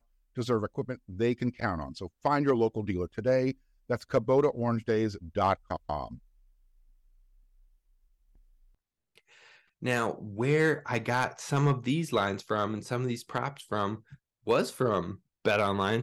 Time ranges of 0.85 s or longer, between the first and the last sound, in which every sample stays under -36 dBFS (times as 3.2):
6.15–9.83